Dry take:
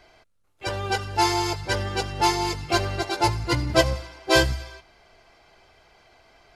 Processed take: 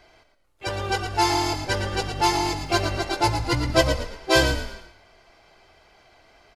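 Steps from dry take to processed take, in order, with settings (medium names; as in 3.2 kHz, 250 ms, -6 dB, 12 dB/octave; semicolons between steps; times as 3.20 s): 2.11–2.72 s: crackle 260 per s -48 dBFS; frequency-shifting echo 113 ms, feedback 32%, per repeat -40 Hz, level -8 dB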